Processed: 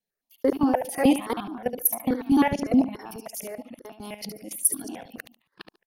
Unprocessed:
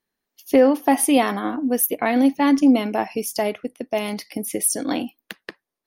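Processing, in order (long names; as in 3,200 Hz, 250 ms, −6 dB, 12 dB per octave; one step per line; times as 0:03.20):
reversed piece by piece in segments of 148 ms
output level in coarse steps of 18 dB
on a send: repeating echo 72 ms, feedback 23%, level −9.5 dB
on the sum: step-sequenced phaser 9.5 Hz 320–2,000 Hz
level +2 dB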